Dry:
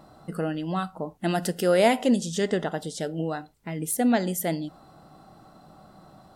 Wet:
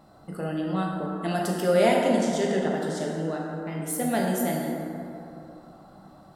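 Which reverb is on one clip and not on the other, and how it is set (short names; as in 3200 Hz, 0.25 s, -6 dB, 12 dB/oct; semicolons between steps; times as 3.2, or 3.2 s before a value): plate-style reverb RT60 2.9 s, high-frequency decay 0.4×, DRR -2.5 dB; gain -4.5 dB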